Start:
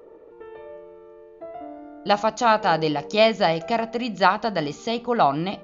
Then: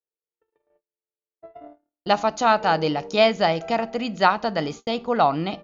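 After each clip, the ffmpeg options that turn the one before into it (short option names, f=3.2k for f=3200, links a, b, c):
-af "agate=range=-56dB:threshold=-35dB:ratio=16:detection=peak"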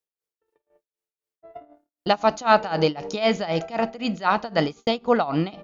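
-af "tremolo=f=3.9:d=0.9,volume=5dB"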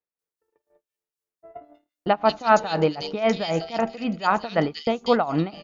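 -filter_complex "[0:a]acrossover=split=2900[a][b];[b]adelay=190[c];[a][c]amix=inputs=2:normalize=0"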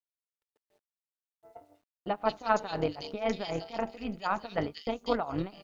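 -af "acrusher=bits=10:mix=0:aa=0.000001,tremolo=f=200:d=0.667,volume=-6.5dB"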